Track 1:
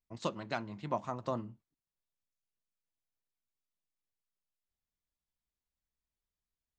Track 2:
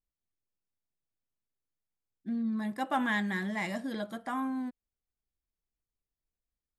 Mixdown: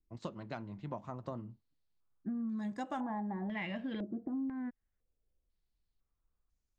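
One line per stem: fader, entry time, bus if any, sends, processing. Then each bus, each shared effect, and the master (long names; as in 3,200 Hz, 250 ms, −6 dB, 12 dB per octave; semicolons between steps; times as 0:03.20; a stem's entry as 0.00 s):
−5.5 dB, 0.00 s, no send, no processing
0.0 dB, 0.00 s, no send, low-pass on a step sequencer 2 Hz 340–6,700 Hz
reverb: not used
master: spectral tilt −2 dB per octave; pitch vibrato 0.99 Hz 30 cents; downward compressor 6 to 1, threshold −36 dBFS, peak gain reduction 13.5 dB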